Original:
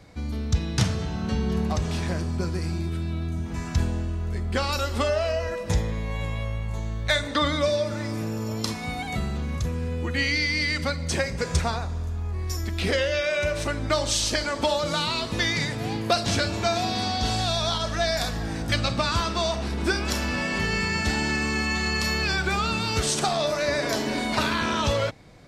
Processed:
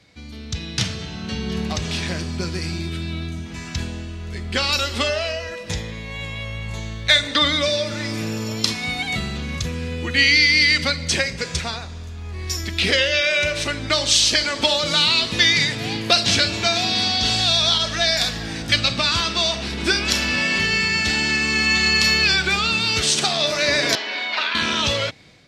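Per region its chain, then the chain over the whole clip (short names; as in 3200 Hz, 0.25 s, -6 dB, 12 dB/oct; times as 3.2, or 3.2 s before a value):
23.95–24.55 HPF 750 Hz + air absorption 230 m
whole clip: low shelf 180 Hz +9 dB; AGC; weighting filter D; gain -7.5 dB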